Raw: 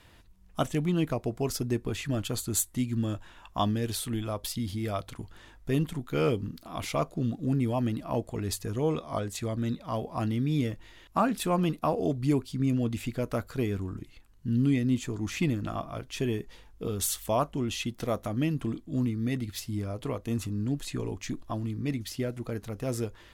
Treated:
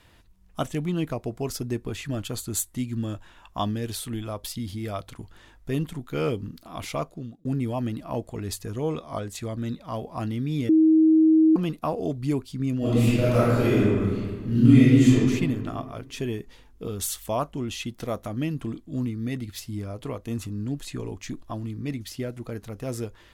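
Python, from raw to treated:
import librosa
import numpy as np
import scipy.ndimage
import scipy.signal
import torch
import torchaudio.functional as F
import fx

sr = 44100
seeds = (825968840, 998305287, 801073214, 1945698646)

y = fx.reverb_throw(x, sr, start_s=12.78, length_s=2.37, rt60_s=1.8, drr_db=-10.5)
y = fx.edit(y, sr, fx.fade_out_span(start_s=6.95, length_s=0.5),
    fx.bleep(start_s=10.69, length_s=0.87, hz=317.0, db=-13.5), tone=tone)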